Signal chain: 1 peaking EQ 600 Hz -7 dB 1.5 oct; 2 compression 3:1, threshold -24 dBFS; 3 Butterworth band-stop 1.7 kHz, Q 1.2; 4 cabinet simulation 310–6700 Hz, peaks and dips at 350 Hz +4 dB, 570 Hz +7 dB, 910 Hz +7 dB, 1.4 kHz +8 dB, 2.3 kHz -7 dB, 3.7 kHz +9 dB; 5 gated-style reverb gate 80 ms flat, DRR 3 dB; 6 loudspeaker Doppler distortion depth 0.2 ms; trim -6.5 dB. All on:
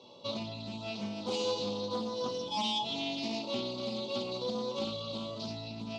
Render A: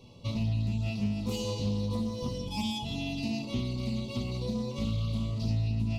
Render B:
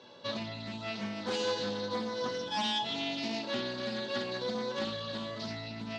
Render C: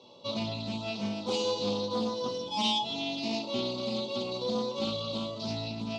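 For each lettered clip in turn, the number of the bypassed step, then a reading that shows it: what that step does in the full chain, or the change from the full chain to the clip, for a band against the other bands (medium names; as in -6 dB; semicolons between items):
4, 125 Hz band +18.0 dB; 3, 2 kHz band +7.5 dB; 2, momentary loudness spread change -2 LU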